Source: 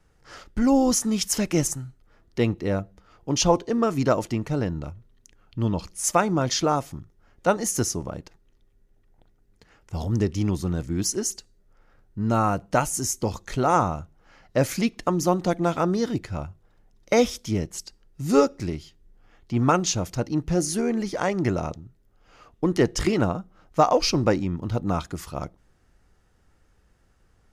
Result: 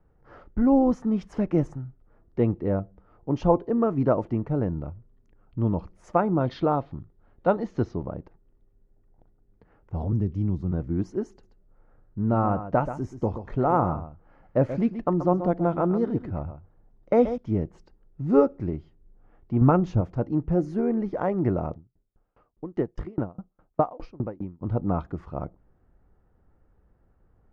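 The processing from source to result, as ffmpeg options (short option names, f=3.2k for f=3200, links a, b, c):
-filter_complex "[0:a]asettb=1/sr,asplit=3[a][b][c];[a]atrim=end=6.404[d];[b]atrim=start=6.4:end=8.05,asetpts=PTS-STARTPTS,afade=t=in:d=0.004:c=qsin,afade=t=out:st=1.646:d=0.004:c=qsin,lowpass=f=4k:t=q:w=3.3[e];[c]atrim=start=8.046[f];[d][e]acrossfade=d=0.004:c1=hsin:c2=qsin[g];[g][f]acrossfade=d=0.004:c1=qsin:c2=hsin,asettb=1/sr,asplit=3[h][i][j];[h]atrim=end=10.124[k];[i]atrim=start=10.12:end=10.72,asetpts=PTS-STARTPTS,afade=t=in:d=0.004:c=qsin,afade=t=out:st=0.596:d=0.004:c=qsin,acrossover=split=250|3000[l][m][n];[m]acompressor=threshold=-46dB:ratio=2:attack=3.2:release=140:knee=2.83:detection=peak[o];[l][o][n]amix=inputs=3:normalize=0[p];[j]atrim=start=10.716[q];[k][p]acrossfade=d=0.004:c1=hsin:c2=qsin[r];[r][q]acrossfade=d=0.004:c1=qsin:c2=hsin,asettb=1/sr,asplit=3[s][t][u];[s]atrim=end=11.304[v];[t]atrim=start=11.3:end=17.38,asetpts=PTS-STARTPTS,afade=t=in:d=0.004:c=qsin,afade=t=out:st=6.076:d=0.004:c=qsin,aecho=1:1:131:0.282,atrim=end_sample=268128[w];[u]atrim=start=17.376[x];[v][w]acrossfade=d=0.004:c1=hsin:c2=qsin[y];[y][x]acrossfade=d=0.004:c1=qsin:c2=hsin,asettb=1/sr,asplit=3[z][aa][ab];[z]atrim=end=19.614[ac];[aa]atrim=start=19.61:end=20.01,asetpts=PTS-STARTPTS,afade=t=in:d=0.004:c=qsin,afade=t=out:st=0.396:d=0.004:c=qsin,lowshelf=f=150:g=10.5[ad];[ab]atrim=start=20.006[ae];[ac][ad]acrossfade=d=0.004:c1=hsin:c2=qsin[af];[af][ae]acrossfade=d=0.004:c1=qsin:c2=hsin,asettb=1/sr,asplit=3[ag][ah][ai];[ag]atrim=end=21.754[aj];[ah]atrim=start=21.75:end=24.63,asetpts=PTS-STARTPTS,afade=t=in:d=0.004:c=qsin,afade=t=out:st=2.876:d=0.004:c=qsin,aeval=exprs='val(0)*pow(10,-31*if(lt(mod(4.9*n/s,1),2*abs(4.9)/1000),1-mod(4.9*n/s,1)/(2*abs(4.9)/1000),(mod(4.9*n/s,1)-2*abs(4.9)/1000)/(1-2*abs(4.9)/1000))/20)':c=same[ak];[ai]atrim=start=24.626[al];[aj][ak]acrossfade=d=0.004:c1=hsin:c2=qsin[am];[am][al]acrossfade=d=0.004:c1=qsin:c2=hsin,lowpass=1k"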